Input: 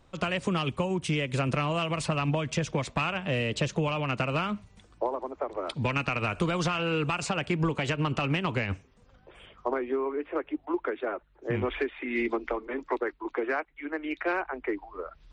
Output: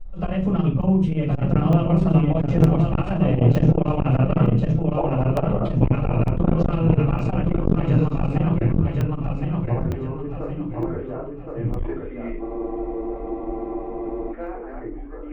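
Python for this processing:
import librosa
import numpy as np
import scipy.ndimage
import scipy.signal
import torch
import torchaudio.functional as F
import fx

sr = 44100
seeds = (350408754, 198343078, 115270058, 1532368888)

y = fx.doppler_pass(x, sr, speed_mps=7, closest_m=9.0, pass_at_s=4.0)
y = fx.rider(y, sr, range_db=3, speed_s=0.5)
y = fx.tilt_eq(y, sr, slope=-4.5)
y = fx.hum_notches(y, sr, base_hz=50, count=3)
y = fx.echo_feedback(y, sr, ms=1067, feedback_pct=36, wet_db=-4.0)
y = fx.room_shoebox(y, sr, seeds[0], volume_m3=230.0, walls='furnished', distance_m=6.6)
y = fx.spec_repair(y, sr, seeds[1], start_s=7.94, length_s=0.38, low_hz=3400.0, high_hz=7500.0, source='both')
y = fx.high_shelf(y, sr, hz=5900.0, db=-6.5)
y = fx.buffer_crackle(y, sr, first_s=0.82, period_s=0.91, block=64, kind='zero')
y = fx.spec_freeze(y, sr, seeds[2], at_s=12.43, hold_s=1.88)
y = fx.transformer_sat(y, sr, knee_hz=300.0)
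y = F.gain(torch.from_numpy(y), -6.0).numpy()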